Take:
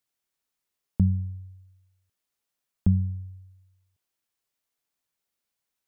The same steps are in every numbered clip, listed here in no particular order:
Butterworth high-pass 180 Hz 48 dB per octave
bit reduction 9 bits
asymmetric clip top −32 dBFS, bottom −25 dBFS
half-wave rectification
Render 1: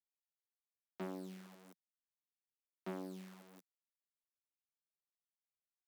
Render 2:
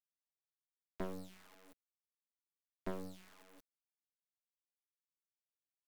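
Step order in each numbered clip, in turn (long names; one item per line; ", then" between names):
bit reduction, then asymmetric clip, then half-wave rectification, then Butterworth high-pass
bit reduction, then asymmetric clip, then Butterworth high-pass, then half-wave rectification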